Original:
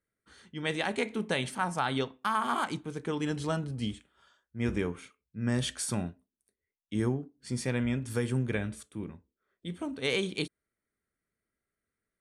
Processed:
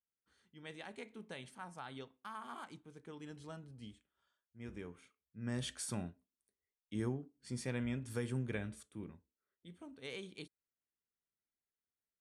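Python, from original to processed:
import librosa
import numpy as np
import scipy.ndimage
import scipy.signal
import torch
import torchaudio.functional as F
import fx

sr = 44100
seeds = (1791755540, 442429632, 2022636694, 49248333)

y = fx.gain(x, sr, db=fx.line((4.66, -18.0), (5.72, -8.5), (9.1, -8.5), (9.69, -16.5)))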